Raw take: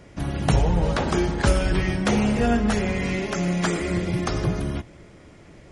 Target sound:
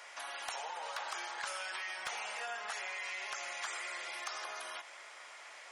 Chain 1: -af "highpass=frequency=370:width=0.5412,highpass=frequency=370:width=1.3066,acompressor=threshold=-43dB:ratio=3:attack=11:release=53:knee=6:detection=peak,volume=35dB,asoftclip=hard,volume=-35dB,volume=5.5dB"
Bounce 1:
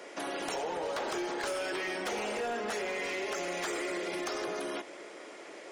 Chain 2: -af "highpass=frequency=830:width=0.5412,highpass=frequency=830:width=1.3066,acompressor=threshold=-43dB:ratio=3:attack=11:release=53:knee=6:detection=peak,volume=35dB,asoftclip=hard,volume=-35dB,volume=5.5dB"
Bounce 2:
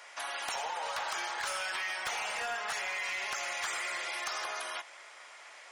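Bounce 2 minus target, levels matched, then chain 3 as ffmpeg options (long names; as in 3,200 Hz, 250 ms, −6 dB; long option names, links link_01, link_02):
downward compressor: peak gain reduction −6 dB
-af "highpass=frequency=830:width=0.5412,highpass=frequency=830:width=1.3066,acompressor=threshold=-52dB:ratio=3:attack=11:release=53:knee=6:detection=peak,volume=35dB,asoftclip=hard,volume=-35dB,volume=5.5dB"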